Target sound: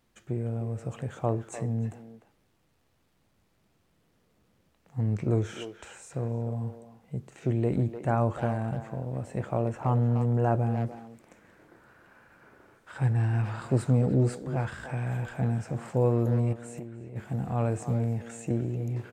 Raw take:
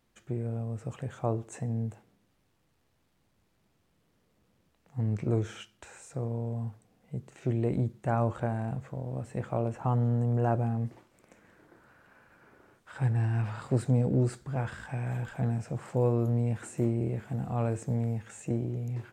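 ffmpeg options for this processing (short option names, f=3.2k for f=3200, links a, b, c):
-filter_complex "[0:a]asplit=3[a][b][c];[a]afade=t=out:st=16.52:d=0.02[d];[b]acompressor=threshold=-40dB:ratio=10,afade=t=in:st=16.52:d=0.02,afade=t=out:st=17.15:d=0.02[e];[c]afade=t=in:st=17.15:d=0.02[f];[d][e][f]amix=inputs=3:normalize=0,asplit=2[g][h];[h]adelay=300,highpass=300,lowpass=3.4k,asoftclip=type=hard:threshold=-24dB,volume=-9dB[i];[g][i]amix=inputs=2:normalize=0,volume=2dB"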